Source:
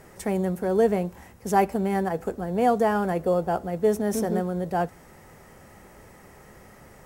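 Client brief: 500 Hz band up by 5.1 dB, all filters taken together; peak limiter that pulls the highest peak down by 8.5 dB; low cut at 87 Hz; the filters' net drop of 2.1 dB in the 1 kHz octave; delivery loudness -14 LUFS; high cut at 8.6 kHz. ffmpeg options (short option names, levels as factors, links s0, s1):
-af "highpass=87,lowpass=8600,equalizer=f=500:t=o:g=8,equalizer=f=1000:t=o:g=-8.5,volume=3.55,alimiter=limit=0.631:level=0:latency=1"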